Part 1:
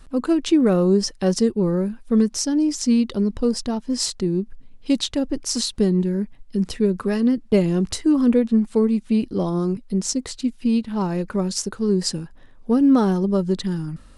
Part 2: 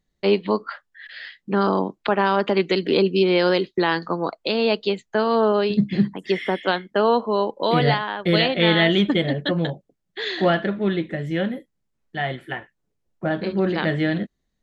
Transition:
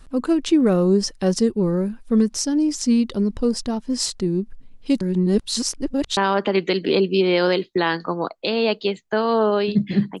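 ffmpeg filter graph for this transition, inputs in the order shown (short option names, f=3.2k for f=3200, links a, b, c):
-filter_complex "[0:a]apad=whole_dur=10.2,atrim=end=10.2,asplit=2[a][b];[a]atrim=end=5.012[c];[b]atrim=start=5.008:end=6.172,asetpts=PTS-STARTPTS,areverse[d];[1:a]atrim=start=2.188:end=6.22[e];[c][d]acrossfade=d=0.004:c1=hsin:c2=hsin[f];[f][e]acrossfade=d=0.004:c1=hsin:c2=hsin"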